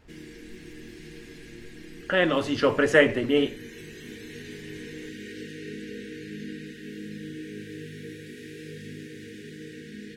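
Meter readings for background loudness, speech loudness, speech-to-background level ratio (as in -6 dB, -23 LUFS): -41.0 LUFS, -23.0 LUFS, 18.0 dB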